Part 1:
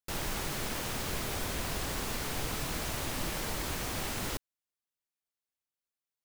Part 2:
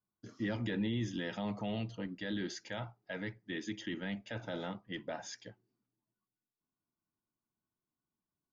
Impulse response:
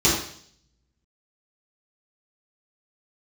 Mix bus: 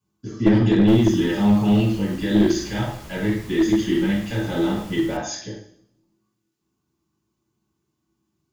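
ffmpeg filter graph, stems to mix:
-filter_complex "[0:a]acrossover=split=130[a][b];[b]acompressor=threshold=-51dB:ratio=1.5[c];[a][c]amix=inputs=2:normalize=0,adelay=800,volume=-4dB,asplit=2[d][e];[e]volume=-21.5dB[f];[1:a]volume=1dB,asplit=2[g][h];[h]volume=-5.5dB[i];[2:a]atrim=start_sample=2205[j];[f][i]amix=inputs=2:normalize=0[k];[k][j]afir=irnorm=-1:irlink=0[l];[d][g][l]amix=inputs=3:normalize=0,aeval=exprs='clip(val(0),-1,0.224)':c=same"

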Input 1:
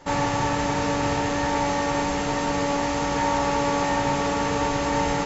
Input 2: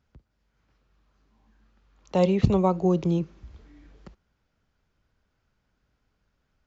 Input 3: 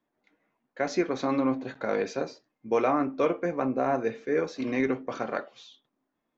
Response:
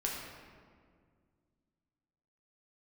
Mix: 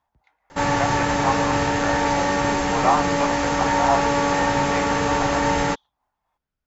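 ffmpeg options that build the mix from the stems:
-filter_complex "[0:a]equalizer=f=1.6k:t=o:w=0.49:g=4,adelay=500,volume=2.5dB[a];[1:a]volume=-13dB[b];[2:a]highpass=f=850:t=q:w=4.8,tremolo=f=3.8:d=0.5,volume=2dB,asplit=2[c][d];[d]volume=-21.5dB,aecho=0:1:114:1[e];[a][b][c][e]amix=inputs=4:normalize=0"

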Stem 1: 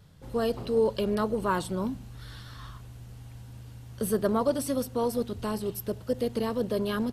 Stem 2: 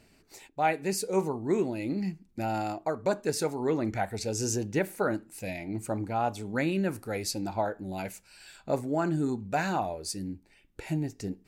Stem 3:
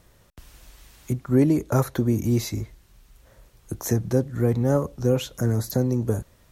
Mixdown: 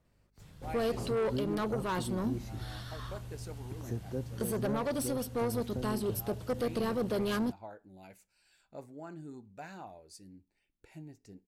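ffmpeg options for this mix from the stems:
-filter_complex "[0:a]asoftclip=type=tanh:threshold=-27.5dB,adelay=400,volume=1dB[a];[1:a]adelay=50,volume=-17.5dB[b];[2:a]highshelf=f=2.7k:g=-11,aeval=exprs='val(0)+0.00141*(sin(2*PI*50*n/s)+sin(2*PI*2*50*n/s)/2+sin(2*PI*3*50*n/s)/3+sin(2*PI*4*50*n/s)/4+sin(2*PI*5*50*n/s)/5)':c=same,volume=-15dB,asplit=2[c][d];[d]apad=whole_len=508081[e];[b][e]sidechaincompress=threshold=-47dB:ratio=8:attack=16:release=169[f];[a][f][c]amix=inputs=3:normalize=0,alimiter=limit=-24dB:level=0:latency=1:release=381"

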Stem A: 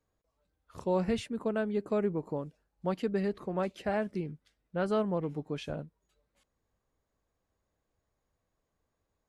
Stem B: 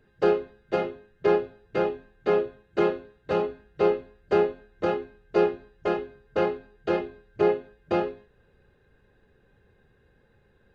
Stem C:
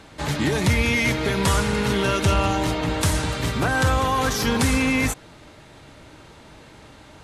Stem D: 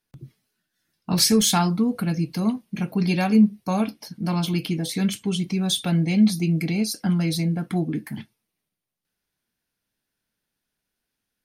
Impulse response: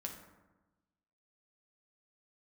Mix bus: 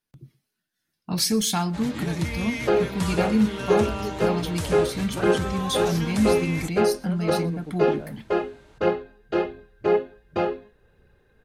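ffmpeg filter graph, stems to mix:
-filter_complex "[0:a]lowpass=5.2k,adelay=2300,volume=1dB[a];[1:a]aphaser=in_gain=1:out_gain=1:delay=4.8:decay=0.31:speed=1.4:type=triangular,adelay=2450,volume=1dB[b];[2:a]adelay=1550,volume=-10.5dB,asplit=2[c][d];[d]volume=-18dB[e];[3:a]volume=-4.5dB,asplit=3[f][g][h];[g]volume=-23dB[i];[h]apad=whole_len=510725[j];[a][j]sidechaincompress=threshold=-31dB:ratio=8:attack=16:release=371[k];[e][i]amix=inputs=2:normalize=0,aecho=0:1:121:1[l];[k][b][c][f][l]amix=inputs=5:normalize=0"

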